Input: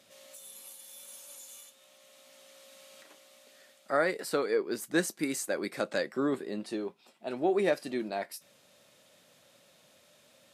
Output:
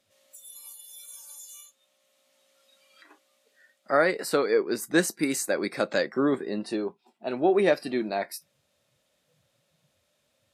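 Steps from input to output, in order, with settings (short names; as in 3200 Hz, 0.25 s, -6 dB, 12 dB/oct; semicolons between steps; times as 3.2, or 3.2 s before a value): spectral noise reduction 16 dB; gain +5.5 dB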